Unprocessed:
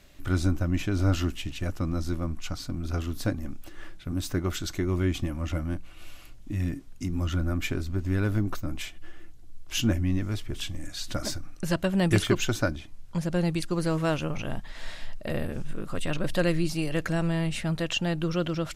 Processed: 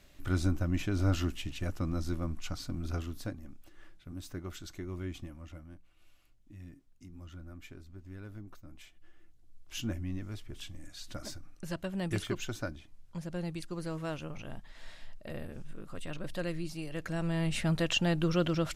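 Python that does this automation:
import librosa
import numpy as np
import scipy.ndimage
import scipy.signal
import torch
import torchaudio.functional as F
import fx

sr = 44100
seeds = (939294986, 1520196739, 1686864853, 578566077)

y = fx.gain(x, sr, db=fx.line((2.89, -4.5), (3.41, -13.0), (5.16, -13.0), (5.69, -20.0), (8.57, -20.0), (9.76, -11.0), (16.93, -11.0), (17.6, -1.0)))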